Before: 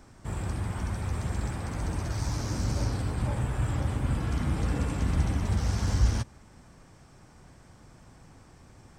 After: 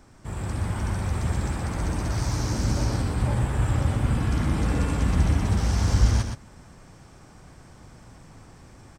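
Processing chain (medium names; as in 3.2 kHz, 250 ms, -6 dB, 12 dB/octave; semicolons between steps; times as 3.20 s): level rider gain up to 4 dB; on a send: delay 120 ms -6 dB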